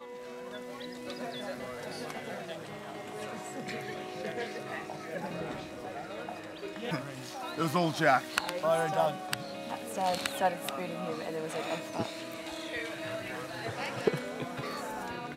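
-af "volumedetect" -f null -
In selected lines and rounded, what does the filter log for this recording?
mean_volume: -35.1 dB
max_volume: -8.3 dB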